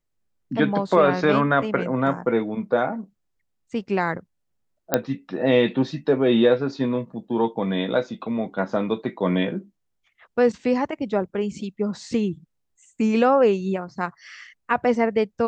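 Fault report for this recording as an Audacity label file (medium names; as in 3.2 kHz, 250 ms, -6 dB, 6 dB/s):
4.940000	4.940000	pop -3 dBFS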